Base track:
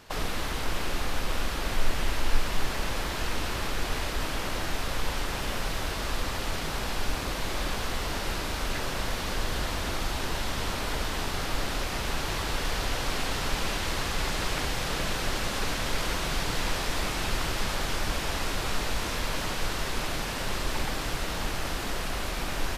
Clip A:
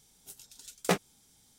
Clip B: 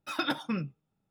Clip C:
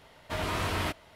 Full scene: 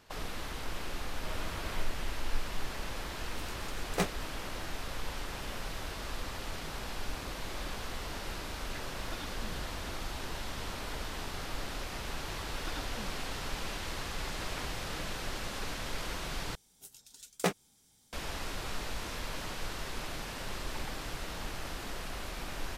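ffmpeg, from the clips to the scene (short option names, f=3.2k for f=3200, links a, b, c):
-filter_complex "[3:a]asplit=2[a][b];[1:a]asplit=2[c][d];[2:a]asplit=2[e][f];[0:a]volume=-8.5dB[g];[c]tremolo=f=5.2:d=0.68[h];[b]acompressor=threshold=-33dB:ratio=6:attack=3.2:release=140:knee=1:detection=peak[i];[g]asplit=2[j][k];[j]atrim=end=16.554[l];[d]atrim=end=1.58,asetpts=PTS-STARTPTS,volume=-3dB[m];[k]atrim=start=18.126[n];[a]atrim=end=1.15,asetpts=PTS-STARTPTS,volume=-13dB,afade=t=in:d=0.004:c=hsin,afade=t=out:st=1.146:d=0.004:c=hsin,adelay=920[o];[h]atrim=end=1.58,asetpts=PTS-STARTPTS,volume=-0.5dB,afade=t=in:d=0.004:c=hsin,afade=t=out:st=1.576:d=0.004:c=hsin,adelay=136269S[p];[e]atrim=end=1.1,asetpts=PTS-STARTPTS,volume=-17dB,afade=t=in:d=0.004:c=hsin,afade=t=out:st=1.096:d=0.004:c=hsin,adelay=8930[q];[f]atrim=end=1.1,asetpts=PTS-STARTPTS,volume=-15dB,afade=t=in:d=0.004:c=hsin,afade=t=out:st=1.096:d=0.004:c=hsin,adelay=12480[r];[i]atrim=end=1.15,asetpts=PTS-STARTPTS,volume=-11.5dB,afade=t=in:d=0.004:c=hsin,afade=t=out:st=1.146:d=0.004:c=hsin,adelay=14100[s];[l][m]acrossfade=d=0.004:c1=hsin:c2=hsin[t];[t][n]acrossfade=d=0.004:c1=hsin:c2=hsin[u];[u][o][p][q][r][s]amix=inputs=6:normalize=0"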